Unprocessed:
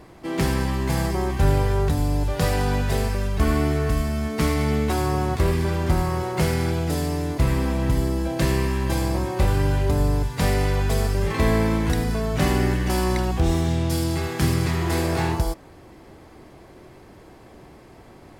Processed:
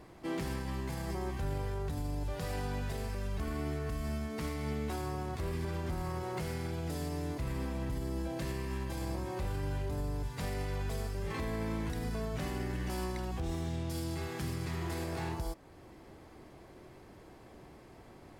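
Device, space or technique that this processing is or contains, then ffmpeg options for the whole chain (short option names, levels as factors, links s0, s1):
stacked limiters: -af "alimiter=limit=0.168:level=0:latency=1:release=51,alimiter=limit=0.0944:level=0:latency=1:release=314,volume=0.422"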